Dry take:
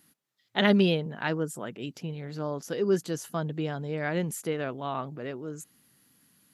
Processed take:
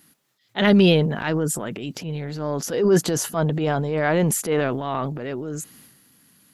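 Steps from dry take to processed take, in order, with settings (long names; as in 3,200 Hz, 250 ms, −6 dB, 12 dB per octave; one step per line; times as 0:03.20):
0:02.61–0:04.61: dynamic equaliser 770 Hz, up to +6 dB, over −41 dBFS, Q 0.74
transient designer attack −7 dB, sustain +8 dB
level +7 dB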